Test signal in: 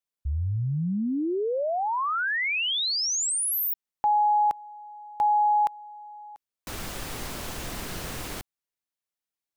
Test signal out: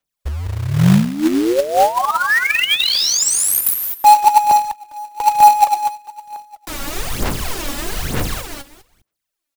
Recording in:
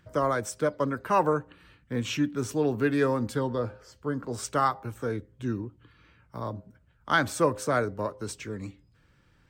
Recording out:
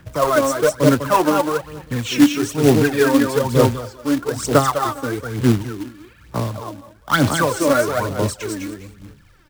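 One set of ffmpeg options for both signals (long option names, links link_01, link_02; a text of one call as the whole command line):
ffmpeg -i in.wav -filter_complex "[0:a]acrossover=split=170|950|2200[link_01][link_02][link_03][link_04];[link_03]asoftclip=type=tanh:threshold=-27dB[link_05];[link_01][link_02][link_05][link_04]amix=inputs=4:normalize=0,aecho=1:1:201|402|603:0.631|0.12|0.0228,aphaser=in_gain=1:out_gain=1:delay=3.6:decay=0.71:speed=1.1:type=sinusoidal,acrusher=bits=3:mode=log:mix=0:aa=0.000001,volume=5.5dB" out.wav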